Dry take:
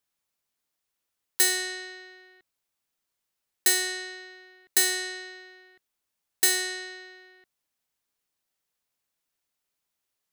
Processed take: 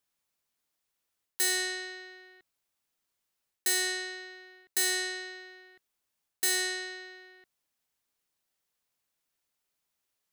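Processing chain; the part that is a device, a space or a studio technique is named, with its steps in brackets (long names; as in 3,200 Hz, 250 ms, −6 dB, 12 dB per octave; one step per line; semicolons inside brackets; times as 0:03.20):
compression on the reversed sound (reversed playback; downward compressor 5 to 1, threshold −25 dBFS, peak gain reduction 8.5 dB; reversed playback)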